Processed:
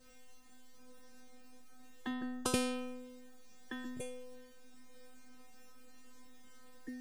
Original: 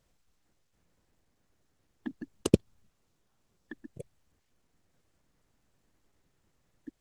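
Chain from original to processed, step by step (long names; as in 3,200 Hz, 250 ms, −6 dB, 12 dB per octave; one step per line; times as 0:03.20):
0:02.09–0:02.50: high shelf with overshoot 1,700 Hz −7.5 dB, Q 3
stiff-string resonator 250 Hz, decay 0.83 s, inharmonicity 0.002
every bin compressed towards the loudest bin 2 to 1
level +16 dB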